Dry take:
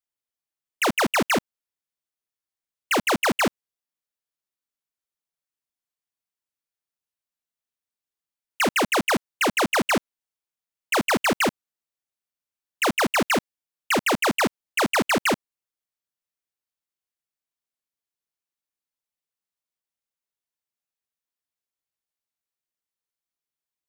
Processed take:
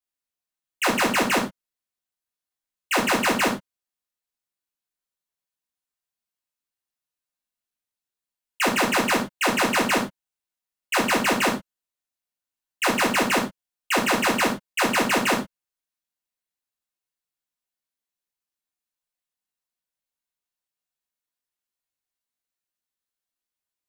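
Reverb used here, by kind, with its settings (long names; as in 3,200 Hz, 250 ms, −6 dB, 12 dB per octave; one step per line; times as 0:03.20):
reverb whose tail is shaped and stops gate 130 ms falling, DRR −3 dB
level −4 dB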